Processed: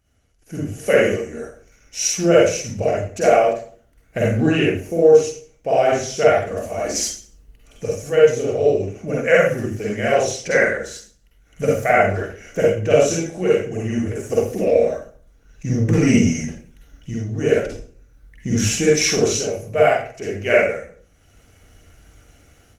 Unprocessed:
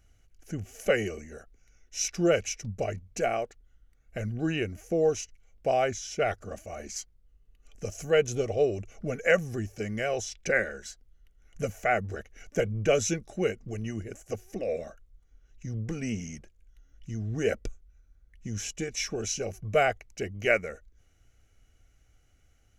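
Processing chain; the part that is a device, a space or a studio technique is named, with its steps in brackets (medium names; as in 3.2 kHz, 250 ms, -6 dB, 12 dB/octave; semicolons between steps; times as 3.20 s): far-field microphone of a smart speaker (reverberation RT60 0.45 s, pre-delay 43 ms, DRR -5.5 dB; high-pass 90 Hz 6 dB/octave; level rider gain up to 15 dB; trim -1 dB; Opus 24 kbps 48 kHz)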